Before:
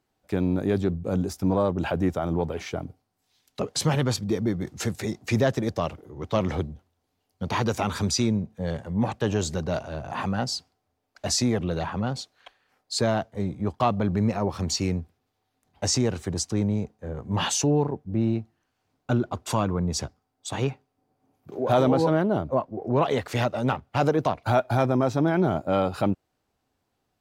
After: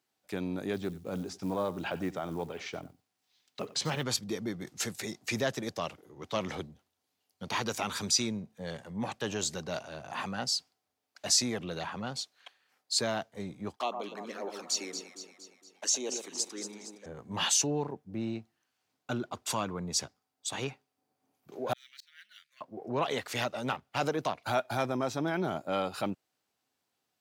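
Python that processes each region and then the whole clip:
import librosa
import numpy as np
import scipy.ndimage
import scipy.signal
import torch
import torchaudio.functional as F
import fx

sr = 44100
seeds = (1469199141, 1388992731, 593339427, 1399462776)

y = fx.chain(x, sr, fx.air_absorb(metres=93.0),
    fx.echo_single(ms=92, db=-17.5),
    fx.quant_companded(bits=8), at=(0.73, 4.03))
y = fx.chain(y, sr, fx.highpass(hz=300.0, slope=24),
    fx.env_flanger(rest_ms=2.6, full_db=-23.5),
    fx.echo_alternate(ms=116, hz=1400.0, feedback_pct=72, wet_db=-6.5), at=(13.76, 17.06))
y = fx.chain(y, sr, fx.ellip_highpass(hz=1800.0, order=4, stop_db=50),
    fx.auto_swell(attack_ms=411.0),
    fx.resample_linear(factor=2), at=(21.73, 22.61))
y = scipy.signal.sosfilt(scipy.signal.butter(2, 140.0, 'highpass', fs=sr, output='sos'), y)
y = fx.tilt_shelf(y, sr, db=-5.5, hz=1400.0)
y = y * librosa.db_to_amplitude(-4.5)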